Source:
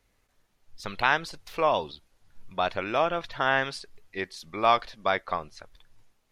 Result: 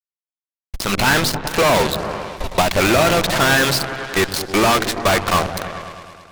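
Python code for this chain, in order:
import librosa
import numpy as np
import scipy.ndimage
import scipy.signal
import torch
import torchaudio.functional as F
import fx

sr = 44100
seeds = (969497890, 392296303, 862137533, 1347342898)

y = fx.fuzz(x, sr, gain_db=40.0, gate_db=-41.0)
y = fx.echo_opening(y, sr, ms=106, hz=200, octaves=1, feedback_pct=70, wet_db=-6)
y = fx.cheby_harmonics(y, sr, harmonics=(8,), levels_db=(-13,), full_scale_db=-7.5)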